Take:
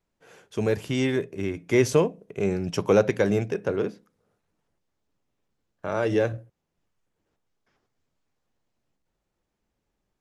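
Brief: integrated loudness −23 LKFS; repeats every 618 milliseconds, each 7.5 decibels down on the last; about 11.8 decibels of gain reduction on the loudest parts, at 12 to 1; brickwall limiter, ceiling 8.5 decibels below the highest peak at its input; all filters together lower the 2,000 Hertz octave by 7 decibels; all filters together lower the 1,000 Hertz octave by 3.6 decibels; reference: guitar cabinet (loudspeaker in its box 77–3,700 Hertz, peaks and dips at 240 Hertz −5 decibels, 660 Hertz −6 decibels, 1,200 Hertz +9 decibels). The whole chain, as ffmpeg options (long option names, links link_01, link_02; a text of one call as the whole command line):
ffmpeg -i in.wav -af "equalizer=frequency=1000:width_type=o:gain=-5.5,equalizer=frequency=2000:width_type=o:gain=-8.5,acompressor=threshold=-27dB:ratio=12,alimiter=level_in=1dB:limit=-24dB:level=0:latency=1,volume=-1dB,highpass=77,equalizer=frequency=240:width_type=q:width=4:gain=-5,equalizer=frequency=660:width_type=q:width=4:gain=-6,equalizer=frequency=1200:width_type=q:width=4:gain=9,lowpass=frequency=3700:width=0.5412,lowpass=frequency=3700:width=1.3066,aecho=1:1:618|1236|1854|2472|3090:0.422|0.177|0.0744|0.0312|0.0131,volume=14.5dB" out.wav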